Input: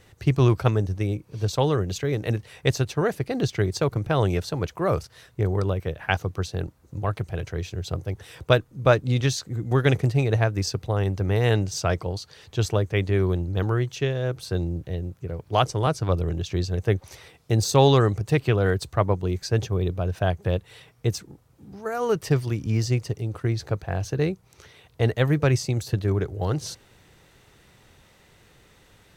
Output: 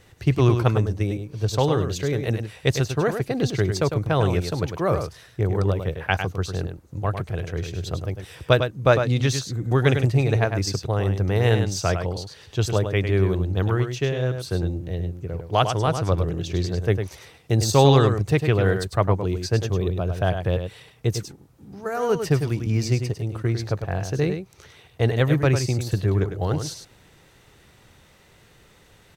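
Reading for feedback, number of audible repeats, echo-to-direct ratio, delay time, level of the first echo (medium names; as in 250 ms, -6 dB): no regular repeats, 1, -7.5 dB, 102 ms, -7.5 dB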